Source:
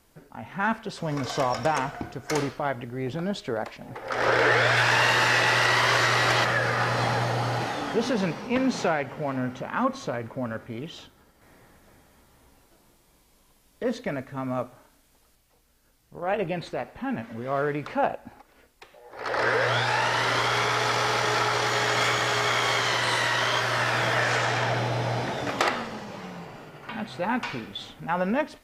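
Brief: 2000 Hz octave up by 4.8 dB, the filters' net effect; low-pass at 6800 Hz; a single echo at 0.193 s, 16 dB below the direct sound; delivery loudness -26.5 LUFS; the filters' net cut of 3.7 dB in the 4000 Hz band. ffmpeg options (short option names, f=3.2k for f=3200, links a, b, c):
-af "lowpass=6.8k,equalizer=f=2k:t=o:g=7.5,equalizer=f=4k:t=o:g=-8,aecho=1:1:193:0.158,volume=-4dB"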